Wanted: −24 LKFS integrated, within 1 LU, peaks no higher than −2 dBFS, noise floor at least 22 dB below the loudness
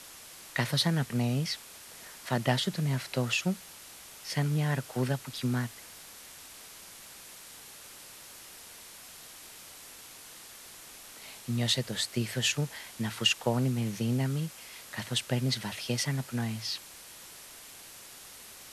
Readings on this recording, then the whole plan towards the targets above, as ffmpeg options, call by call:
background noise floor −49 dBFS; target noise floor −53 dBFS; integrated loudness −31.0 LKFS; sample peak −12.0 dBFS; target loudness −24.0 LKFS
→ -af "afftdn=noise_reduction=6:noise_floor=-49"
-af "volume=7dB"

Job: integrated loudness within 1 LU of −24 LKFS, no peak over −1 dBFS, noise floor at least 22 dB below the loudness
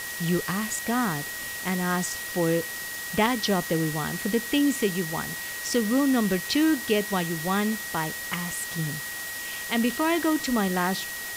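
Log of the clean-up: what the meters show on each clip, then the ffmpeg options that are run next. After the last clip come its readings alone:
interfering tone 1,900 Hz; level of the tone −35 dBFS; background noise floor −35 dBFS; target noise floor −48 dBFS; integrated loudness −26.0 LKFS; sample peak −9.0 dBFS; target loudness −24.0 LKFS
→ -af "bandreject=frequency=1900:width=30"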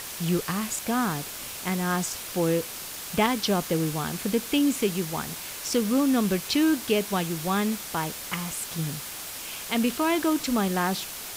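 interfering tone none found; background noise floor −38 dBFS; target noise floor −49 dBFS
→ -af "afftdn=noise_reduction=11:noise_floor=-38"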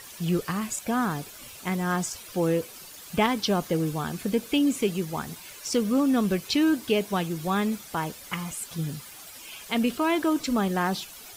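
background noise floor −45 dBFS; target noise floor −49 dBFS
→ -af "afftdn=noise_reduction=6:noise_floor=-45"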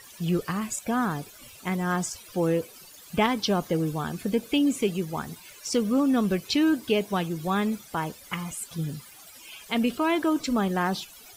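background noise floor −49 dBFS; integrated loudness −27.0 LKFS; sample peak −10.0 dBFS; target loudness −24.0 LKFS
→ -af "volume=3dB"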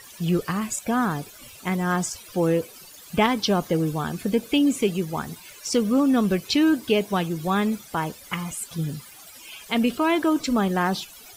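integrated loudness −24.0 LKFS; sample peak −7.0 dBFS; background noise floor −46 dBFS

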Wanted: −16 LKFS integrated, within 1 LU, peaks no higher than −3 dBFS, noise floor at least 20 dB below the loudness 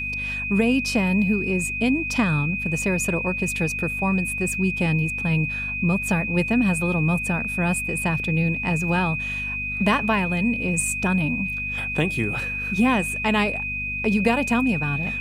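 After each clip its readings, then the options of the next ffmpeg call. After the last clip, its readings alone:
mains hum 50 Hz; hum harmonics up to 250 Hz; level of the hum −34 dBFS; interfering tone 2,500 Hz; level of the tone −26 dBFS; integrated loudness −22.5 LKFS; sample peak −6.5 dBFS; target loudness −16.0 LKFS
→ -af "bandreject=frequency=50:width_type=h:width=4,bandreject=frequency=100:width_type=h:width=4,bandreject=frequency=150:width_type=h:width=4,bandreject=frequency=200:width_type=h:width=4,bandreject=frequency=250:width_type=h:width=4"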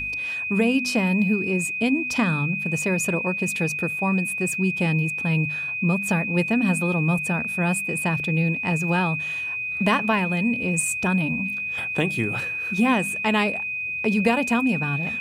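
mains hum none found; interfering tone 2,500 Hz; level of the tone −26 dBFS
→ -af "bandreject=frequency=2500:width=30"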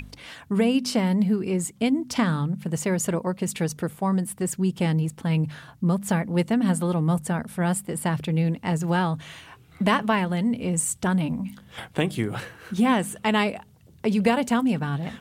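interfering tone none found; integrated loudness −25.0 LKFS; sample peak −7.5 dBFS; target loudness −16.0 LKFS
→ -af "volume=9dB,alimiter=limit=-3dB:level=0:latency=1"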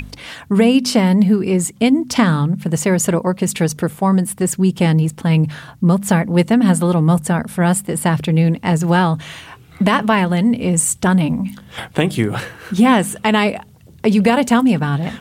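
integrated loudness −16.0 LKFS; sample peak −3.0 dBFS; background noise floor −43 dBFS

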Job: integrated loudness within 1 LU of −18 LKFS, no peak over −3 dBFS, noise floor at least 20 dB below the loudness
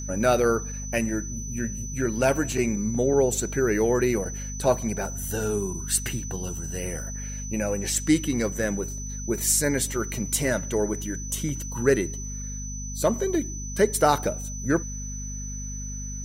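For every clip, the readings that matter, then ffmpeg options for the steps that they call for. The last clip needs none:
mains hum 50 Hz; hum harmonics up to 250 Hz; level of the hum −32 dBFS; interfering tone 6,000 Hz; level of the tone −36 dBFS; integrated loudness −26.0 LKFS; sample peak −6.5 dBFS; target loudness −18.0 LKFS
→ -af "bandreject=frequency=50:width_type=h:width=4,bandreject=frequency=100:width_type=h:width=4,bandreject=frequency=150:width_type=h:width=4,bandreject=frequency=200:width_type=h:width=4,bandreject=frequency=250:width_type=h:width=4"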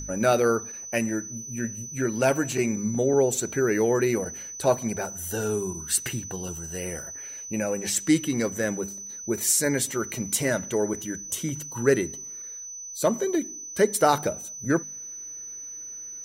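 mains hum none found; interfering tone 6,000 Hz; level of the tone −36 dBFS
→ -af "bandreject=frequency=6000:width=30"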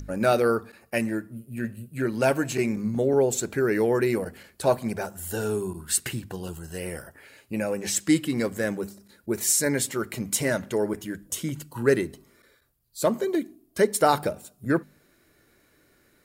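interfering tone none found; integrated loudness −26.5 LKFS; sample peak −7.0 dBFS; target loudness −18.0 LKFS
→ -af "volume=8.5dB,alimiter=limit=-3dB:level=0:latency=1"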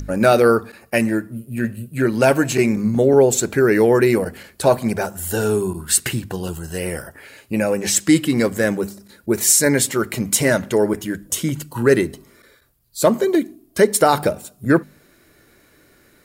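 integrated loudness −18.5 LKFS; sample peak −3.0 dBFS; background noise floor −55 dBFS

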